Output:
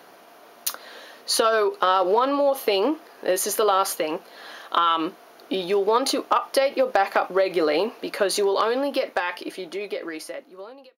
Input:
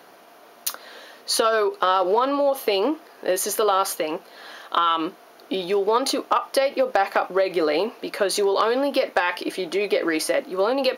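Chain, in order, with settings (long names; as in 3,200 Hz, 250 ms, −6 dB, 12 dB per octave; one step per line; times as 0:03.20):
fade-out on the ending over 2.76 s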